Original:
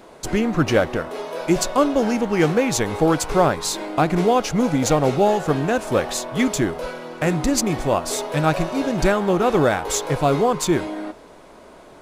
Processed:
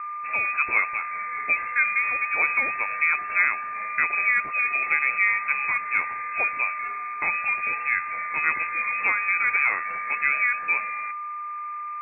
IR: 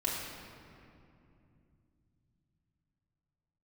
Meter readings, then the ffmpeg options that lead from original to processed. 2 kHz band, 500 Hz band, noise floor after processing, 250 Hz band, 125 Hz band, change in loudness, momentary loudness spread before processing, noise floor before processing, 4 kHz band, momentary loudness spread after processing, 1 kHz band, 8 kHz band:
+8.5 dB, -25.0 dB, -33 dBFS, under -30 dB, under -30 dB, -3.0 dB, 6 LU, -45 dBFS, under -40 dB, 8 LU, -4.0 dB, under -40 dB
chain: -af "aeval=exprs='val(0)+0.0562*sin(2*PI*1500*n/s)':c=same,highpass=f=130:p=1,lowpass=f=2.3k:t=q:w=0.5098,lowpass=f=2.3k:t=q:w=0.6013,lowpass=f=2.3k:t=q:w=0.9,lowpass=f=2.3k:t=q:w=2.563,afreqshift=-2700,volume=-5dB"

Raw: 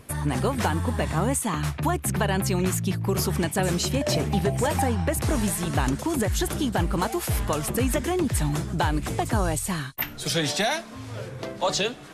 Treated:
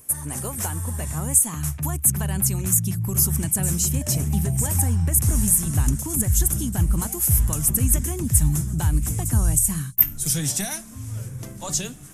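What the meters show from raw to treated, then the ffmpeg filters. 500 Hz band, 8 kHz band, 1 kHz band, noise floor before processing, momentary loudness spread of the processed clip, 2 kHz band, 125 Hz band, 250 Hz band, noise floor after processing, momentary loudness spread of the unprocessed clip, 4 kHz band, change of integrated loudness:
-10.5 dB, +10.5 dB, -10.0 dB, -40 dBFS, 9 LU, -8.5 dB, +4.0 dB, -2.0 dB, -38 dBFS, 4 LU, -6.0 dB, +4.5 dB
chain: -af "asubboost=boost=8:cutoff=170,aexciter=amount=11.1:drive=3.3:freq=6.1k,bandreject=f=60:t=h:w=6,bandreject=f=120:t=h:w=6,bandreject=f=180:t=h:w=6,volume=-8dB"

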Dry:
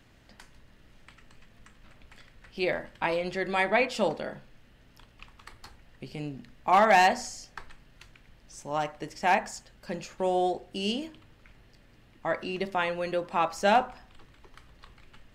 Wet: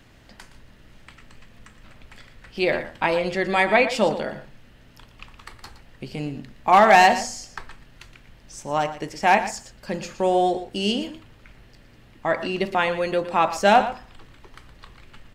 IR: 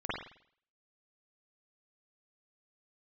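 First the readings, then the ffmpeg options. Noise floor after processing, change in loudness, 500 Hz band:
-51 dBFS, +6.5 dB, +6.5 dB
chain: -af "aecho=1:1:117:0.224,volume=6.5dB"

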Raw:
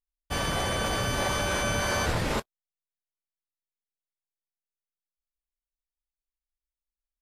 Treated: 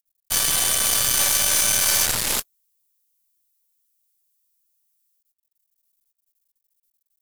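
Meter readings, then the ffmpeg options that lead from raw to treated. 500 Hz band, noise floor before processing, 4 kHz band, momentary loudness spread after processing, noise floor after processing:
-5.0 dB, under -85 dBFS, +9.5 dB, 7 LU, -80 dBFS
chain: -af "aeval=exprs='max(val(0),0)':c=same,crystalizer=i=8:c=0,highshelf=f=6.3k:g=7,volume=-1.5dB"

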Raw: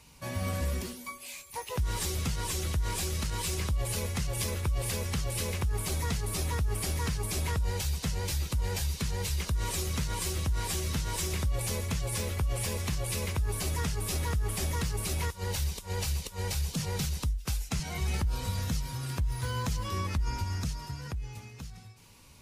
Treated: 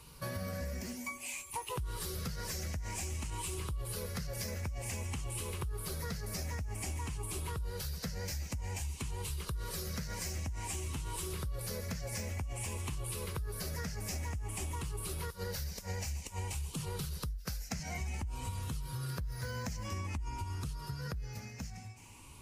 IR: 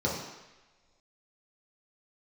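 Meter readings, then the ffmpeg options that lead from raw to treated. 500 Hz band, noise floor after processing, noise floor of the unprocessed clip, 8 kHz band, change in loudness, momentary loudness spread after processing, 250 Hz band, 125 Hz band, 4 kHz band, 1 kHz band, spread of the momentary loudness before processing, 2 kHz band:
-6.0 dB, -49 dBFS, -48 dBFS, -6.5 dB, -7.0 dB, 2 LU, -6.0 dB, -7.0 dB, -8.0 dB, -6.0 dB, 4 LU, -6.0 dB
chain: -af "afftfilt=real='re*pow(10,8/40*sin(2*PI*(0.63*log(max(b,1)*sr/1024/100)/log(2)-(0.53)*(pts-256)/sr)))':imag='im*pow(10,8/40*sin(2*PI*(0.63*log(max(b,1)*sr/1024/100)/log(2)-(0.53)*(pts-256)/sr)))':win_size=1024:overlap=0.75,equalizer=f=3.6k:t=o:w=0.39:g=-5.5,acompressor=threshold=-37dB:ratio=6,volume=1dB"

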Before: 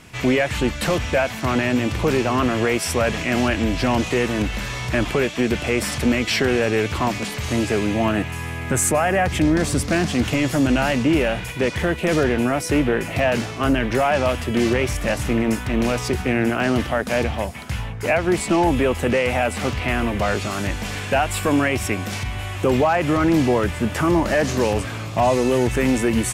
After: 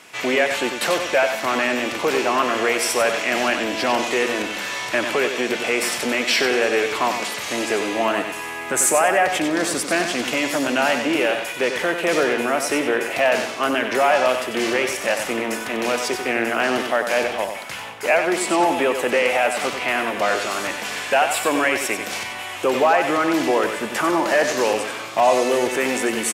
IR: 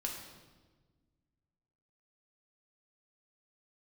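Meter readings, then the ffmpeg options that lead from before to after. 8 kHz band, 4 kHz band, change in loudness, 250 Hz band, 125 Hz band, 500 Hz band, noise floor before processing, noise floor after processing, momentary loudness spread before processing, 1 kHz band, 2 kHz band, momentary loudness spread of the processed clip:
+3.0 dB, +3.0 dB, +0.5 dB, -5.5 dB, -18.0 dB, +1.0 dB, -30 dBFS, -31 dBFS, 5 LU, +3.0 dB, +3.5 dB, 6 LU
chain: -filter_complex "[0:a]highpass=440,asplit=2[a][b];[b]aecho=0:1:94|188|282|376:0.422|0.139|0.0459|0.0152[c];[a][c]amix=inputs=2:normalize=0,volume=2.5dB"

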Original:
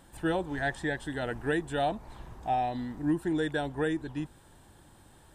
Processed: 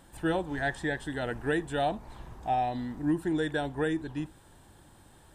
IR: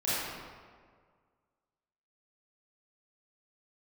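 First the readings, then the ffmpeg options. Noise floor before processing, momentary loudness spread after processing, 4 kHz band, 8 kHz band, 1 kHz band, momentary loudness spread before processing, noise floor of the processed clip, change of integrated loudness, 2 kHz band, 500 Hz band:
-57 dBFS, 10 LU, +0.5 dB, +0.5 dB, +0.5 dB, 10 LU, -57 dBFS, +0.5 dB, +0.5 dB, +0.5 dB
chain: -filter_complex "[0:a]asplit=2[a][b];[1:a]atrim=start_sample=2205,atrim=end_sample=3528[c];[b][c]afir=irnorm=-1:irlink=0,volume=-25.5dB[d];[a][d]amix=inputs=2:normalize=0"

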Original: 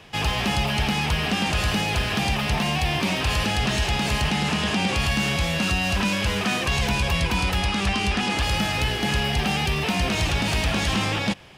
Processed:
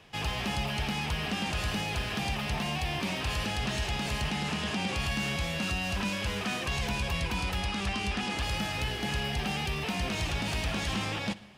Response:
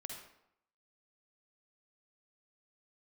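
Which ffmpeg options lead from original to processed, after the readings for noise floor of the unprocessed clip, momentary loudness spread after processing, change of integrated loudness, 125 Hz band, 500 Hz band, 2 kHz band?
-26 dBFS, 1 LU, -8.5 dB, -8.5 dB, -8.5 dB, -8.5 dB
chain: -filter_complex "[0:a]asplit=2[a][b];[1:a]atrim=start_sample=2205,adelay=63[c];[b][c]afir=irnorm=-1:irlink=0,volume=-14.5dB[d];[a][d]amix=inputs=2:normalize=0,volume=-8.5dB"

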